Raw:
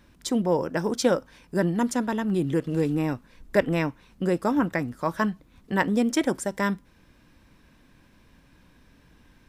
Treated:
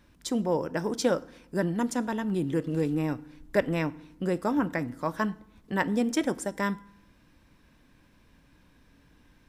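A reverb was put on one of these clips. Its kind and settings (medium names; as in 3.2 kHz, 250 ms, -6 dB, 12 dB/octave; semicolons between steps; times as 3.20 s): FDN reverb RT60 0.78 s, low-frequency decay 1.35×, high-frequency decay 0.75×, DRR 17 dB; trim -3.5 dB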